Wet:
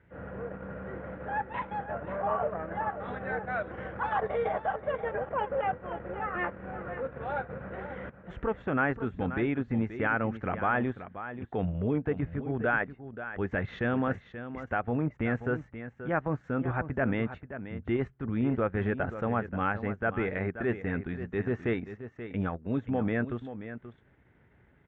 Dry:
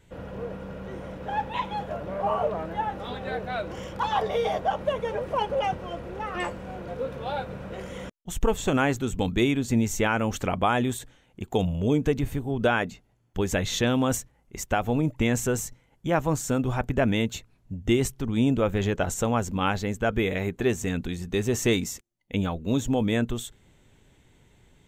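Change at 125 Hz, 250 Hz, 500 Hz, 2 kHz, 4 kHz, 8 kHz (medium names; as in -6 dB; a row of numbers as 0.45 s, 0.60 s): -5.5 dB, -5.5 dB, -5.0 dB, -1.5 dB, -19.0 dB, under -40 dB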